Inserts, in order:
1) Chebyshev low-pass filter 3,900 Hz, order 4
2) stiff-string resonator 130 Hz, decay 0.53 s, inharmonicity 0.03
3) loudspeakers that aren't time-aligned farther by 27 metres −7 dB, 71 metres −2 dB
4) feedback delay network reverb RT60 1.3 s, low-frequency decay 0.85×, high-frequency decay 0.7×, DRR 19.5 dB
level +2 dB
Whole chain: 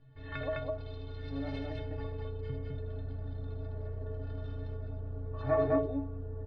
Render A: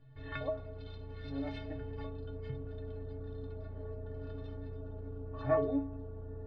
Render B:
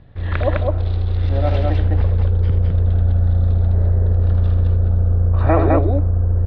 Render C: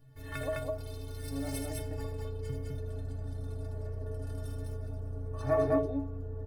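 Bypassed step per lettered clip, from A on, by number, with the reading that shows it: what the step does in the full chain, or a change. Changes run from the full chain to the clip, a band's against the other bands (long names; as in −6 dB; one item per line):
3, echo-to-direct ratio −0.5 dB to −19.5 dB
2, 125 Hz band +10.5 dB
1, 4 kHz band +1.5 dB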